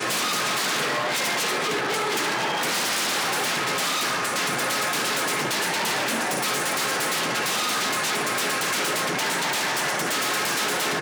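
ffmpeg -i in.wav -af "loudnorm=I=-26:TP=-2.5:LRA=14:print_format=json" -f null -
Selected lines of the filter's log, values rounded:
"input_i" : "-23.1",
"input_tp" : "-14.5",
"input_lra" : "0.1",
"input_thresh" : "-33.1",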